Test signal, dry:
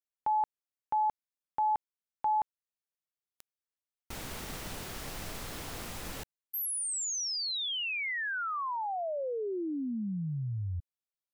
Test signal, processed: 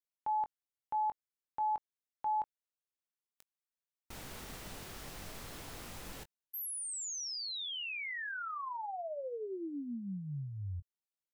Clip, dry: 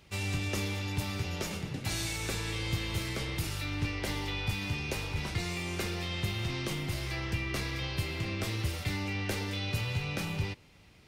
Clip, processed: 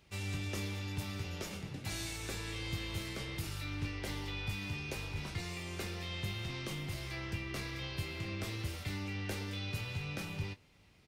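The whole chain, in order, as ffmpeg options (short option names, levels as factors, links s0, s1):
-filter_complex "[0:a]asplit=2[s0][s1];[s1]adelay=21,volume=0.282[s2];[s0][s2]amix=inputs=2:normalize=0,volume=0.473"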